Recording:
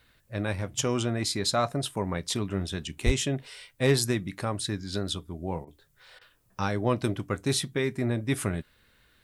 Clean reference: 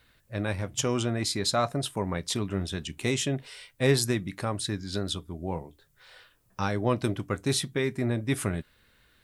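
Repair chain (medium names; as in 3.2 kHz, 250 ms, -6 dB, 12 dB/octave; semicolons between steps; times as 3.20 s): clip repair -13 dBFS; 3.05–3.17 s: high-pass 140 Hz 24 dB/octave; interpolate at 5.65/6.19 s, 21 ms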